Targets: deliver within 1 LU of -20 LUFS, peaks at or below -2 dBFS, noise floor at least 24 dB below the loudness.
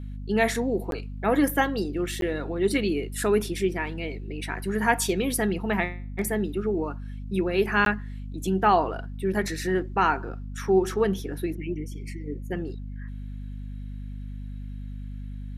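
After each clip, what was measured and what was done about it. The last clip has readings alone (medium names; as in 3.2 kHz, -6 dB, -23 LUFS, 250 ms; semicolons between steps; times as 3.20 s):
dropouts 3; longest dropout 12 ms; hum 50 Hz; highest harmonic 250 Hz; hum level -33 dBFS; loudness -26.5 LUFS; peak level -6.5 dBFS; loudness target -20.0 LUFS
-> interpolate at 0.91/2.21/7.85 s, 12 ms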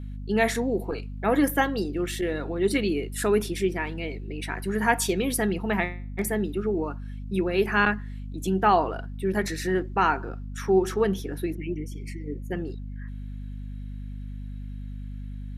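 dropouts 0; hum 50 Hz; highest harmonic 250 Hz; hum level -33 dBFS
-> hum notches 50/100/150/200/250 Hz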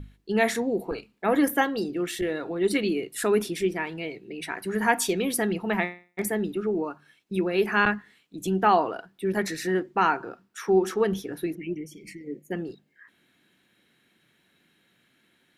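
hum not found; loudness -26.5 LUFS; peak level -7.0 dBFS; loudness target -20.0 LUFS
-> trim +6.5 dB; peak limiter -2 dBFS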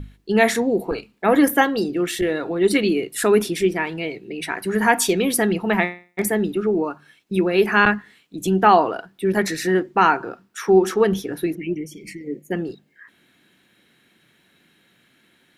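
loudness -20.5 LUFS; peak level -2.0 dBFS; noise floor -61 dBFS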